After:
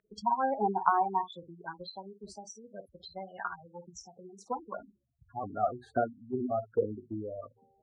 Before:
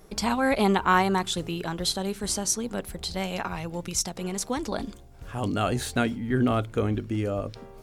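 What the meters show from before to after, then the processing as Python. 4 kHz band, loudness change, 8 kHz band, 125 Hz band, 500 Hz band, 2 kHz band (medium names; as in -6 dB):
-19.5 dB, -6.5 dB, -23.0 dB, -16.5 dB, -6.0 dB, -13.0 dB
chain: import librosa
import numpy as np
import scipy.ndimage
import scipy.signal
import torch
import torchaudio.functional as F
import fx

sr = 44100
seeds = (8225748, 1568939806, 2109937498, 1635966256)

y = fx.transient(x, sr, attack_db=9, sustain_db=-4)
y = fx.room_early_taps(y, sr, ms=(19, 52), db=(-13.5, -11.5))
y = fx.spec_gate(y, sr, threshold_db=-10, keep='strong')
y = fx.peak_eq(y, sr, hz=85.0, db=10.0, octaves=2.5)
y = fx.auto_wah(y, sr, base_hz=660.0, top_hz=1800.0, q=3.2, full_db=-13.5, direction='down')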